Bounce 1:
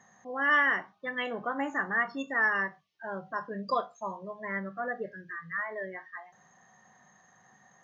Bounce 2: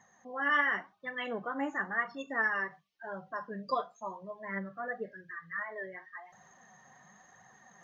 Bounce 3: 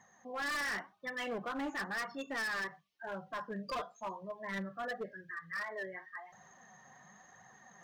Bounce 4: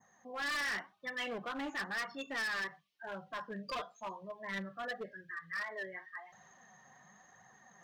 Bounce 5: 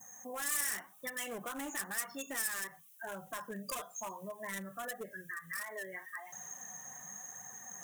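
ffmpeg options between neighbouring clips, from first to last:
-af "areverse,acompressor=mode=upward:threshold=-47dB:ratio=2.5,areverse,flanger=delay=0.9:depth=6.9:regen=34:speed=0.94:shape=triangular"
-af "asoftclip=type=hard:threshold=-34.5dB"
-af "adynamicequalizer=threshold=0.00224:dfrequency=3200:dqfactor=0.8:tfrequency=3200:tqfactor=0.8:attack=5:release=100:ratio=0.375:range=3:mode=boostabove:tftype=bell,volume=-2.5dB"
-af "acompressor=threshold=-45dB:ratio=6,aexciter=amount=13:drive=8.2:freq=6.9k,volume=5dB"

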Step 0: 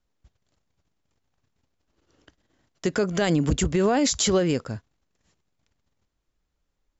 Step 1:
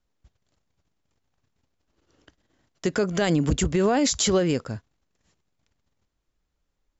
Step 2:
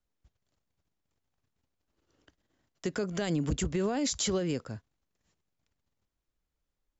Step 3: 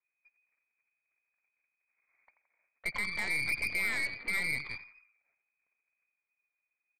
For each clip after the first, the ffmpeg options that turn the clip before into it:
-af anull
-filter_complex "[0:a]acrossover=split=370|3000[a][b][c];[b]acompressor=threshold=-28dB:ratio=2[d];[a][d][c]amix=inputs=3:normalize=0,volume=-7.5dB"
-filter_complex "[0:a]asplit=6[a][b][c][d][e][f];[b]adelay=85,afreqshift=-56,volume=-10.5dB[g];[c]adelay=170,afreqshift=-112,volume=-16.9dB[h];[d]adelay=255,afreqshift=-168,volume=-23.3dB[i];[e]adelay=340,afreqshift=-224,volume=-29.6dB[j];[f]adelay=425,afreqshift=-280,volume=-36dB[k];[a][g][h][i][j][k]amix=inputs=6:normalize=0,lowpass=f=2.1k:t=q:w=0.5098,lowpass=f=2.1k:t=q:w=0.6013,lowpass=f=2.1k:t=q:w=0.9,lowpass=f=2.1k:t=q:w=2.563,afreqshift=-2500,aeval=exprs='0.119*(cos(1*acos(clip(val(0)/0.119,-1,1)))-cos(1*PI/2))+0.015*(cos(8*acos(clip(val(0)/0.119,-1,1)))-cos(8*PI/2))':c=same,volume=-3.5dB"

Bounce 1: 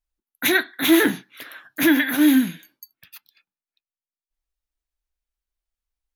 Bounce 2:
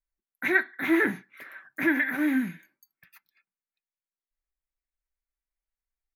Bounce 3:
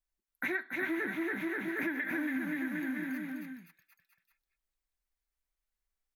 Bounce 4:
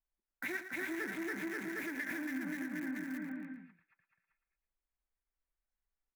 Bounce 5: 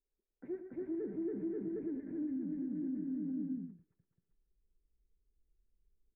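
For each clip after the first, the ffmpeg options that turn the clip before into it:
-filter_complex "[0:a]highshelf=f=2.6k:t=q:w=3:g=-6.5,acrossover=split=3900[a][b];[b]acompressor=threshold=-40dB:ratio=4:attack=1:release=60[c];[a][c]amix=inputs=2:normalize=0,aecho=1:1:5.2:0.33,volume=-7.5dB"
-af "aecho=1:1:280|532|758.8|962.9|1147:0.631|0.398|0.251|0.158|0.1,acompressor=threshold=-32dB:ratio=6"
-filter_complex "[0:a]acrossover=split=2500[a][b];[a]alimiter=level_in=5.5dB:limit=-24dB:level=0:latency=1:release=202,volume=-5.5dB[c];[b]acrusher=bits=7:mix=0:aa=0.000001[d];[c][d]amix=inputs=2:normalize=0,aecho=1:1:113:0.299,volume=-2.5dB"
-af "asubboost=boost=7.5:cutoff=220,alimiter=level_in=11dB:limit=-24dB:level=0:latency=1:release=170,volume=-11dB,lowpass=f=430:t=q:w=4.7"

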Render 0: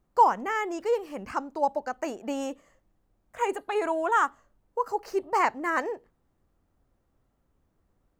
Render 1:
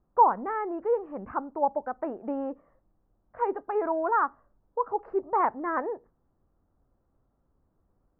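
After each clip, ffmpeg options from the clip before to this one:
-af "lowpass=f=1.4k:w=0.5412,lowpass=f=1.4k:w=1.3066"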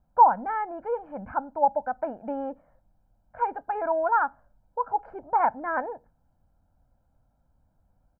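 -af "aecho=1:1:1.3:0.79"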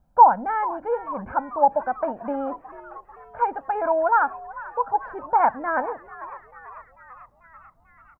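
-filter_complex "[0:a]asplit=7[a][b][c][d][e][f][g];[b]adelay=442,afreqshift=83,volume=-17dB[h];[c]adelay=884,afreqshift=166,volume=-20.9dB[i];[d]adelay=1326,afreqshift=249,volume=-24.8dB[j];[e]adelay=1768,afreqshift=332,volume=-28.6dB[k];[f]adelay=2210,afreqshift=415,volume=-32.5dB[l];[g]adelay=2652,afreqshift=498,volume=-36.4dB[m];[a][h][i][j][k][l][m]amix=inputs=7:normalize=0,volume=4dB"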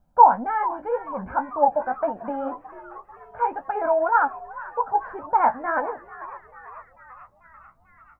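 -af "flanger=delay=9.9:depth=7.3:regen=32:speed=1.9:shape=sinusoidal,volume=3.5dB"

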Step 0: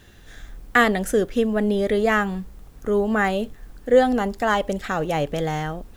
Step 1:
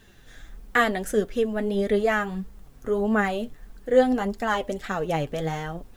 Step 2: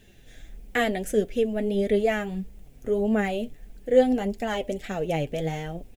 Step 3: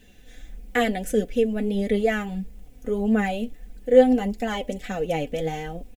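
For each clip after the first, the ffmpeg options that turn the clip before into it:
-af "flanger=delay=4.4:depth=3.8:regen=40:speed=1.6:shape=sinusoidal"
-af "firequalizer=gain_entry='entry(660,0);entry(1100,-14);entry(2300,2);entry(4200,-4);entry(6900,-1)':delay=0.05:min_phase=1"
-af "aecho=1:1:4:0.6"

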